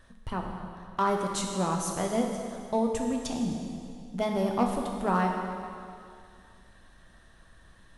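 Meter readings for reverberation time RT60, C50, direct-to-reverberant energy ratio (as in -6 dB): 2.3 s, 3.0 dB, 1.0 dB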